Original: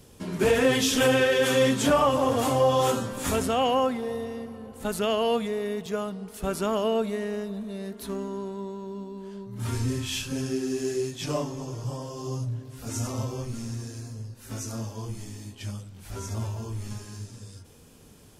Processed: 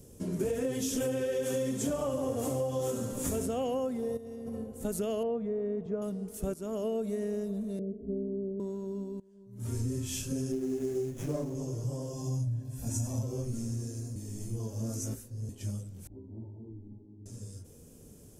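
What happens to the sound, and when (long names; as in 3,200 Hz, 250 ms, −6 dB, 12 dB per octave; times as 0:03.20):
0:01.10–0:03.46: feedback echo with a high-pass in the loop 70 ms, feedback 65%, level −9 dB
0:04.17–0:04.64: compressor whose output falls as the input rises −40 dBFS
0:05.23–0:06.02: low-pass filter 1,500 Hz
0:06.54–0:07.07: fade in, from −14.5 dB
0:07.79–0:08.60: Butterworth low-pass 590 Hz
0:09.20–0:09.86: fade in quadratic, from −21 dB
0:10.52–0:11.55: windowed peak hold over 9 samples
0:12.13–0:13.23: comb filter 1.2 ms
0:14.16–0:15.49: reverse
0:16.07–0:17.26: formant resonators in series u
whole clip: flat-topped bell 1,900 Hz −12 dB 2.9 octaves; downward compressor, threshold −29 dBFS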